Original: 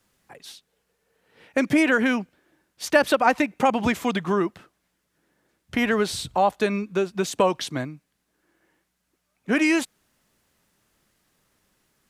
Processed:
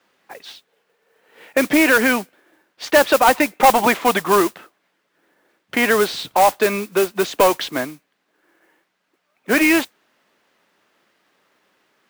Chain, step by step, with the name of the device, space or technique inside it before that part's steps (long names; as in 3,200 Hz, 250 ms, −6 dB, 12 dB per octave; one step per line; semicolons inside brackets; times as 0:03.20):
0:03.62–0:04.41: dynamic equaliser 840 Hz, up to +6 dB, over −32 dBFS, Q 0.96
carbon microphone (band-pass filter 340–3,500 Hz; soft clipping −15 dBFS, distortion −12 dB; noise that follows the level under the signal 13 dB)
level +9 dB